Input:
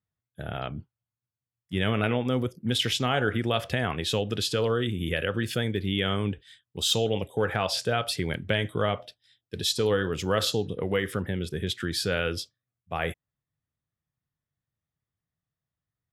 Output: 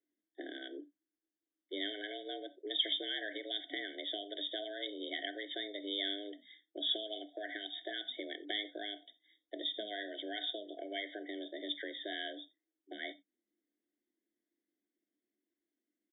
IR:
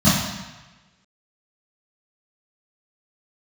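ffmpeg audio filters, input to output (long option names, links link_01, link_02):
-filter_complex "[0:a]acrossover=split=2200[link_01][link_02];[link_01]acompressor=threshold=-39dB:ratio=10[link_03];[link_03][link_02]amix=inputs=2:normalize=0,afreqshift=200,aresample=8000,aresample=44100,asplit=2[link_04][link_05];[1:a]atrim=start_sample=2205,afade=type=out:start_time=0.14:duration=0.01,atrim=end_sample=6615[link_06];[link_05][link_06]afir=irnorm=-1:irlink=0,volume=-34dB[link_07];[link_04][link_07]amix=inputs=2:normalize=0,afftfilt=real='re*eq(mod(floor(b*sr/1024/750),2),0)':imag='im*eq(mod(floor(b*sr/1024/750),2),0)':win_size=1024:overlap=0.75,volume=-2dB"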